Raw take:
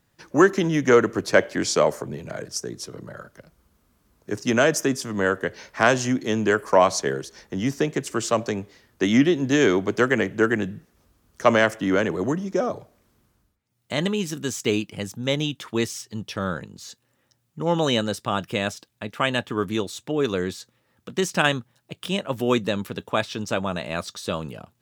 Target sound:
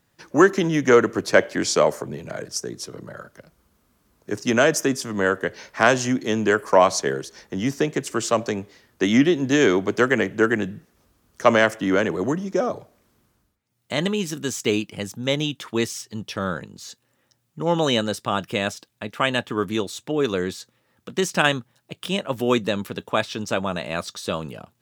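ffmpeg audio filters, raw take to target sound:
-af "lowshelf=f=100:g=-5.5,volume=1.5dB"

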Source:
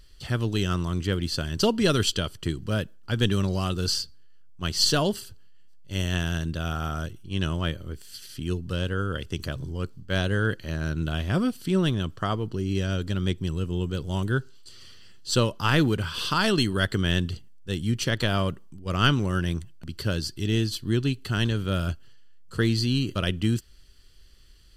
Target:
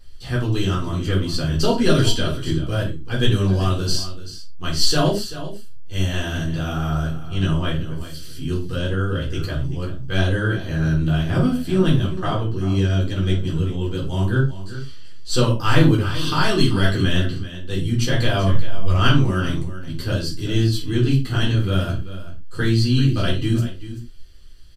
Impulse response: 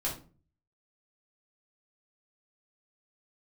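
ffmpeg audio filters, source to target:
-filter_complex "[0:a]asplit=3[a][b][c];[a]afade=t=out:st=18.46:d=0.02[d];[b]asubboost=boost=8:cutoff=71,afade=t=in:st=18.46:d=0.02,afade=t=out:st=18.92:d=0.02[e];[c]afade=t=in:st=18.92:d=0.02[f];[d][e][f]amix=inputs=3:normalize=0,aecho=1:1:386:0.211[g];[1:a]atrim=start_sample=2205,atrim=end_sample=6174[h];[g][h]afir=irnorm=-1:irlink=0,volume=-1dB"

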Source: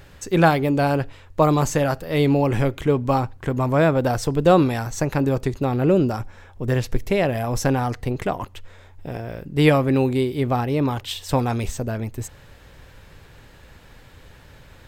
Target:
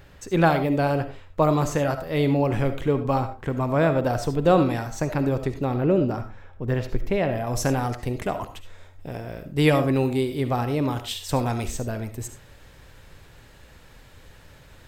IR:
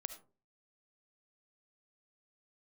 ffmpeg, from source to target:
-filter_complex "[0:a]asetnsamples=n=441:p=0,asendcmd='5.78 equalizer g -11.5;7.47 equalizer g 3.5',equalizer=f=9.2k:w=0.53:g=-4[a];[1:a]atrim=start_sample=2205,afade=t=out:st=0.24:d=0.01,atrim=end_sample=11025[b];[a][b]afir=irnorm=-1:irlink=0"

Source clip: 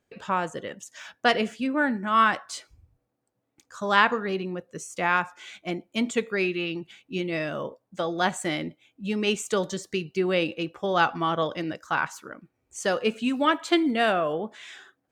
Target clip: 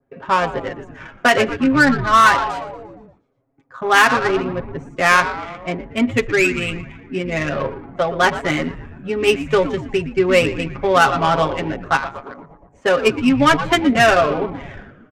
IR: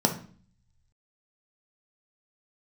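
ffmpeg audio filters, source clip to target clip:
-filter_complex "[0:a]acrossover=split=220|3000[a][b][c];[b]crystalizer=i=4.5:c=0[d];[c]aeval=exprs='0.0237*(abs(mod(val(0)/0.0237+3,4)-2)-1)':c=same[e];[a][d][e]amix=inputs=3:normalize=0,asettb=1/sr,asplit=3[f][g][h];[f]atrim=end=11.964[i];[g]atrim=start=11.96:end=12.82,asetpts=PTS-STARTPTS,afade=t=in:d=0.004:c=qsin,afade=t=out:st=0.856:d=0.004:c=qsin,acompressor=threshold=-40dB:ratio=2[j];[h]atrim=start=12.816[k];[i][j]acrossfade=d=0.004:c1=hsin:c2=qsin[l];[l][k]acrossfade=d=0.004:c1=qsin:c2=hsin,equalizer=f=4.3k:t=o:w=1.3:g=-9.5,aecho=1:1:7.4:0.85,asplit=2[m][n];[n]asplit=7[o][p][q][r][s][t][u];[o]adelay=117,afreqshift=-130,volume=-11.5dB[v];[p]adelay=234,afreqshift=-260,volume=-15.7dB[w];[q]adelay=351,afreqshift=-390,volume=-19.8dB[x];[r]adelay=468,afreqshift=-520,volume=-24dB[y];[s]adelay=585,afreqshift=-650,volume=-28.1dB[z];[t]adelay=702,afreqshift=-780,volume=-32.3dB[aa];[u]adelay=819,afreqshift=-910,volume=-36.4dB[ab];[v][w][x][y][z][aa][ab]amix=inputs=7:normalize=0[ac];[m][ac]amix=inputs=2:normalize=0,adynamicsmooth=sensitivity=2:basefreq=1.3k,alimiter=level_in=8.5dB:limit=-1dB:release=50:level=0:latency=1,adynamicequalizer=threshold=0.0501:dfrequency=2000:dqfactor=0.7:tfrequency=2000:tqfactor=0.7:attack=5:release=100:ratio=0.375:range=2.5:mode=boostabove:tftype=highshelf,volume=-2dB"

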